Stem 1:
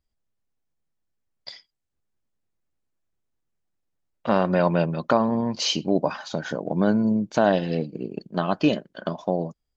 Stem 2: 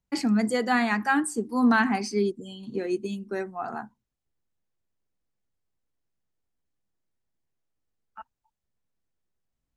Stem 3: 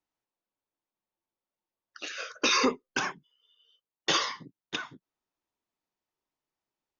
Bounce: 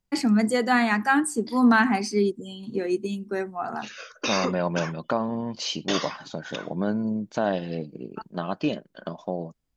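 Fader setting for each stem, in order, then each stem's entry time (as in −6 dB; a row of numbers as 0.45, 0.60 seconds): −5.5, +2.5, −3.0 decibels; 0.00, 0.00, 1.80 seconds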